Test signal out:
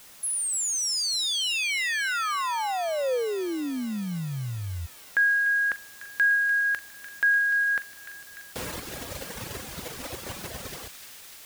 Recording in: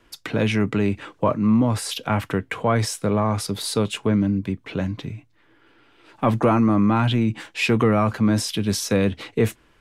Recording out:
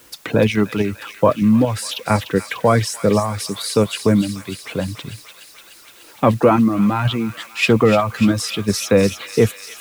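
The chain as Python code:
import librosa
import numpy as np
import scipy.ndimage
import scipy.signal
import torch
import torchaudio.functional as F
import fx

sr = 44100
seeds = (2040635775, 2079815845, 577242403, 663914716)

p1 = scipy.signal.sosfilt(scipy.signal.butter(2, 56.0, 'highpass', fs=sr, output='sos'), x)
p2 = fx.dereverb_blind(p1, sr, rt60_s=1.7)
p3 = fx.peak_eq(p2, sr, hz=510.0, db=5.5, octaves=0.3)
p4 = fx.level_steps(p3, sr, step_db=21)
p5 = p3 + F.gain(torch.from_numpy(p4), -2.0).numpy()
p6 = fx.dmg_noise_colour(p5, sr, seeds[0], colour='white', level_db=-51.0)
p7 = p6 + fx.echo_wet_highpass(p6, sr, ms=296, feedback_pct=74, hz=2000.0, wet_db=-8.0, dry=0)
y = F.gain(torch.from_numpy(p7), 1.5).numpy()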